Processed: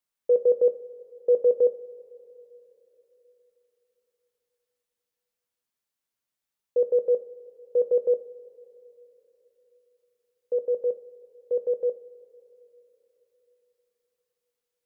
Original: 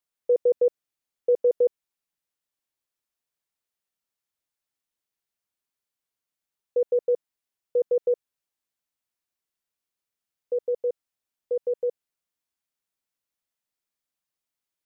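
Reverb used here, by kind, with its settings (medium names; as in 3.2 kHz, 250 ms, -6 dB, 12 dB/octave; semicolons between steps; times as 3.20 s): two-slope reverb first 0.39 s, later 3.9 s, from -18 dB, DRR 8.5 dB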